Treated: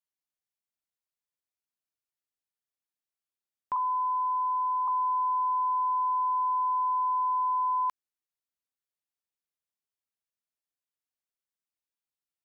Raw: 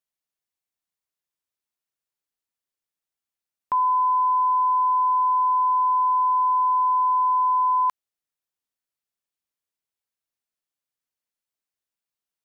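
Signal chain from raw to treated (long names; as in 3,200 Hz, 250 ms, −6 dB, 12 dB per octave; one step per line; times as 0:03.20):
0:03.76–0:04.88: low-pass filter 1,200 Hz 24 dB per octave
level −7 dB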